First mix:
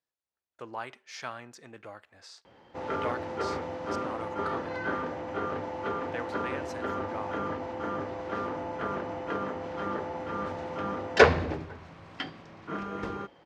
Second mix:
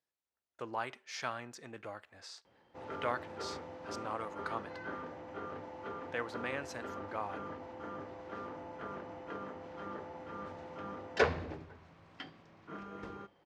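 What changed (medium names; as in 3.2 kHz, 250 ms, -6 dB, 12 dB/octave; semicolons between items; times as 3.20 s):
background -12.0 dB; reverb: on, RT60 0.60 s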